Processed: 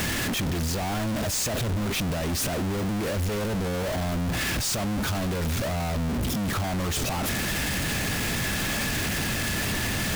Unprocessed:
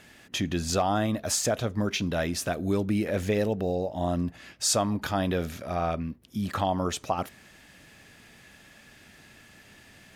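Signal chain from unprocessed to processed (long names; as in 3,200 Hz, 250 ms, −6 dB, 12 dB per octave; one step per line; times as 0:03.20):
sign of each sample alone
low-shelf EQ 210 Hz +8.5 dB
brickwall limiter −26 dBFS, peak gain reduction 4.5 dB
level +3 dB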